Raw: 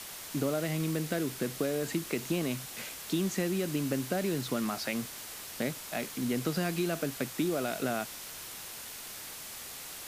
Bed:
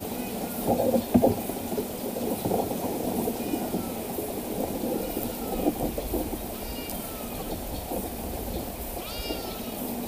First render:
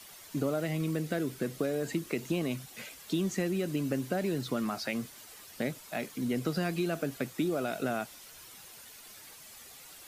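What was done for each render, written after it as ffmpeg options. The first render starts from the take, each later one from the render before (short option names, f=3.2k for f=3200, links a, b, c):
-af "afftdn=nr=10:nf=-44"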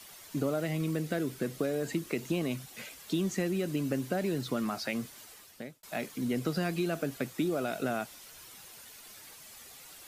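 -filter_complex "[0:a]asplit=2[a][b];[a]atrim=end=5.83,asetpts=PTS-STARTPTS,afade=t=out:st=5.23:d=0.6[c];[b]atrim=start=5.83,asetpts=PTS-STARTPTS,afade=t=in:d=0.004:c=hsin[d];[c][d]concat=n=2:v=0:a=1"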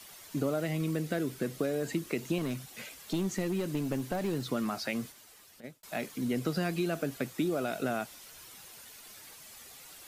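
-filter_complex "[0:a]asettb=1/sr,asplit=3[a][b][c];[a]atrim=end=2.384[d];[b]atrim=start=2.38:end=4.46,asetpts=PTS-STARTPTS,afade=t=in:d=0.004:c=qsin,afade=t=out:st=2.076:d=0.004:c=qsin,aeval=exprs='clip(val(0),-1,0.0266)':c=same[e];[c]atrim=start=4.456[f];[d][e]acrossfade=d=0.004:c1=hsin:c2=qsin[g];[g][f]acrossfade=d=0.004:c1=qsin:c2=hsin,asplit=3[h][i][j];[h]afade=t=out:st=5.11:d=0.02[k];[i]acompressor=threshold=-53dB:ratio=3:attack=3.2:release=140:knee=1:detection=peak,afade=t=in:st=5.11:d=0.02,afade=t=out:st=5.63:d=0.02[l];[j]afade=t=in:st=5.63:d=0.02[m];[k][l][m]amix=inputs=3:normalize=0"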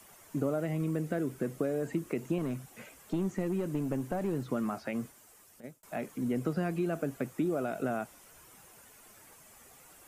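-filter_complex "[0:a]acrossover=split=3200[a][b];[b]acompressor=threshold=-55dB:ratio=4:attack=1:release=60[c];[a][c]amix=inputs=2:normalize=0,equalizer=f=2k:t=o:w=1:g=-3,equalizer=f=4k:t=o:w=1:g=-10,equalizer=f=8k:t=o:w=1:g=4"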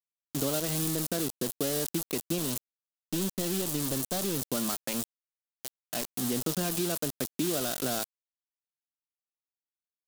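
-af "aeval=exprs='val(0)*gte(abs(val(0)),0.0158)':c=same,aexciter=amount=3.4:drive=8:freq=3.1k"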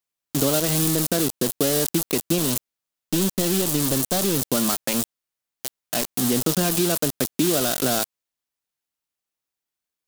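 -af "volume=9dB"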